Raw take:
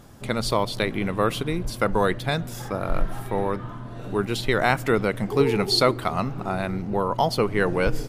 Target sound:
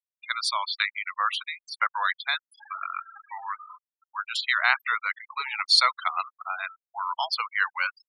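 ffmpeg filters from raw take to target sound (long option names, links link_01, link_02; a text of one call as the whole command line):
ffmpeg -i in.wav -af "highpass=frequency=1100:width=0.5412,highpass=frequency=1100:width=1.3066,afftfilt=real='re*gte(hypot(re,im),0.0316)':imag='im*gte(hypot(re,im),0.0316)':win_size=1024:overlap=0.75,volume=3.5dB" out.wav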